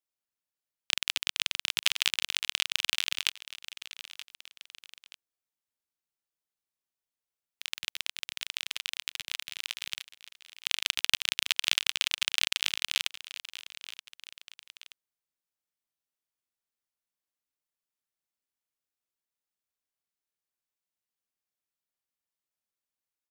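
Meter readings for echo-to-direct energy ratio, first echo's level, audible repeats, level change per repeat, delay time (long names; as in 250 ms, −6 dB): −15.0 dB, −16.0 dB, 2, −6.5 dB, 927 ms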